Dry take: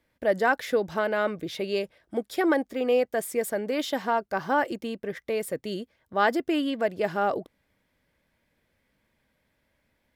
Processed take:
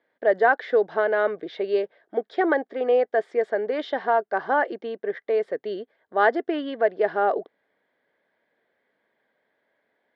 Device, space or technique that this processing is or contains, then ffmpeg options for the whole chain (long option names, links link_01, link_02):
phone earpiece: -af "highpass=330,equalizer=frequency=420:width_type=q:width=4:gain=8,equalizer=frequency=710:width_type=q:width=4:gain=7,equalizer=frequency=1700:width_type=q:width=4:gain=6,equalizer=frequency=2600:width_type=q:width=4:gain=-9,lowpass=frequency=3600:width=0.5412,lowpass=frequency=3600:width=1.3066"